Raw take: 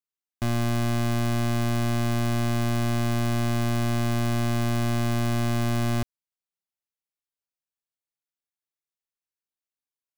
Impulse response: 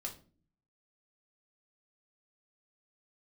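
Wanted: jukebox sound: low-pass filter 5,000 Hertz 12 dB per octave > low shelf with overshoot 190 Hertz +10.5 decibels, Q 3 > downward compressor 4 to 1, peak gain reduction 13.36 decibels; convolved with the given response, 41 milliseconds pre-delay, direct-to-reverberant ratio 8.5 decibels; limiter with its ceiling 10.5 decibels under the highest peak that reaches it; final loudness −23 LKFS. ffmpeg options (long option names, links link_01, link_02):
-filter_complex "[0:a]alimiter=level_in=10.5dB:limit=-24dB:level=0:latency=1,volume=-10.5dB,asplit=2[link_01][link_02];[1:a]atrim=start_sample=2205,adelay=41[link_03];[link_02][link_03]afir=irnorm=-1:irlink=0,volume=-7dB[link_04];[link_01][link_04]amix=inputs=2:normalize=0,lowpass=5000,lowshelf=frequency=190:width_type=q:width=3:gain=10.5,acompressor=threshold=-33dB:ratio=4,volume=13.5dB"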